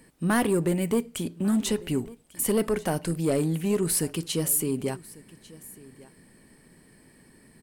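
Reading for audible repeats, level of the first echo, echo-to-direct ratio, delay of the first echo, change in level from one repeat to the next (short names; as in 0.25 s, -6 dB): 1, -21.0 dB, -21.0 dB, 1.146 s, no steady repeat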